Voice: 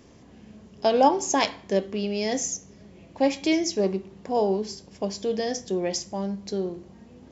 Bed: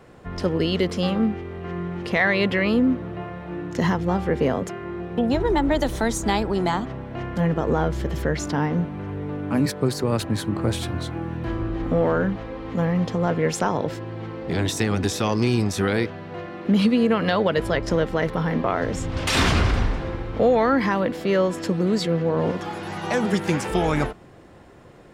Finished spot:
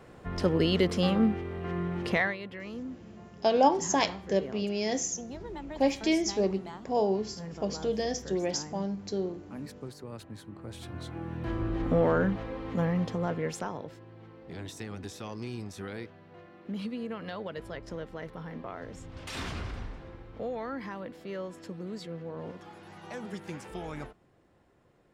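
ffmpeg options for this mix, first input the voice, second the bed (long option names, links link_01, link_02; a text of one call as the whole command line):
ffmpeg -i stem1.wav -i stem2.wav -filter_complex "[0:a]adelay=2600,volume=-3.5dB[link_01];[1:a]volume=13dB,afade=type=out:start_time=2.09:duration=0.28:silence=0.141254,afade=type=in:start_time=10.68:duration=1.06:silence=0.158489,afade=type=out:start_time=12.52:duration=1.39:silence=0.211349[link_02];[link_01][link_02]amix=inputs=2:normalize=0" out.wav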